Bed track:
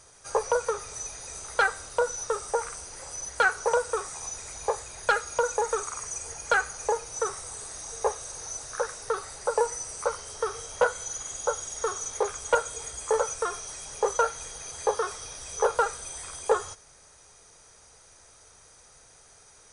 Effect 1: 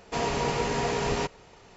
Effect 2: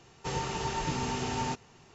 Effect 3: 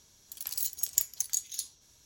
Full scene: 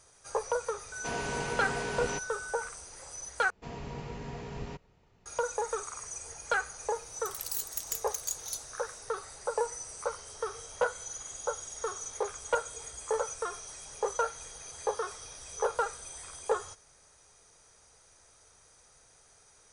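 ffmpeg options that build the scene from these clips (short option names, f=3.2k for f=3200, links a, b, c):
-filter_complex "[1:a]asplit=2[a][b];[0:a]volume=-6dB[c];[a]aeval=exprs='val(0)+0.0251*sin(2*PI*1500*n/s)':c=same[d];[b]bass=f=250:g=10,treble=f=4k:g=-4[e];[3:a]asoftclip=type=hard:threshold=-22.5dB[f];[c]asplit=2[g][h];[g]atrim=end=3.504[i];[e]atrim=end=1.76,asetpts=PTS-STARTPTS,volume=-16.5dB[j];[h]atrim=start=5.256[k];[d]atrim=end=1.76,asetpts=PTS-STARTPTS,volume=-7.5dB,afade=t=in:d=0.004:c=hsin,afade=t=out:st=1.756:d=0.004:c=hsin,adelay=920[l];[f]atrim=end=2.05,asetpts=PTS-STARTPTS,volume=-2dB,afade=t=in:d=0.004:c=hsin,afade=t=out:st=2.046:d=0.004:c=hsin,adelay=6940[m];[i][j]acrossfade=d=0.004:c1=hsin:c2=hsin[n];[n][k]acrossfade=d=0.004:c1=hsin:c2=hsin[o];[o][l][m]amix=inputs=3:normalize=0"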